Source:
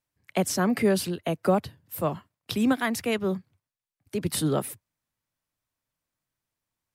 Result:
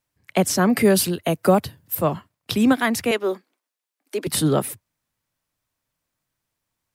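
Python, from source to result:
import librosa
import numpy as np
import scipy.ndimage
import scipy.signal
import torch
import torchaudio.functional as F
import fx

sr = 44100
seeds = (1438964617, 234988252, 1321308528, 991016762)

y = fx.high_shelf(x, sr, hz=7600.0, db=9.5, at=(0.76, 1.95))
y = fx.steep_highpass(y, sr, hz=270.0, slope=36, at=(3.11, 4.27))
y = y * librosa.db_to_amplitude(6.0)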